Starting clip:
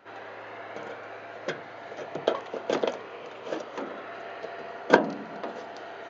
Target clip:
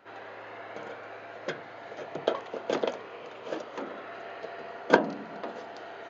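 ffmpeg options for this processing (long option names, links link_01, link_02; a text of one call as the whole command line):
ffmpeg -i in.wav -af "bandreject=frequency=5900:width=27,volume=-2dB" out.wav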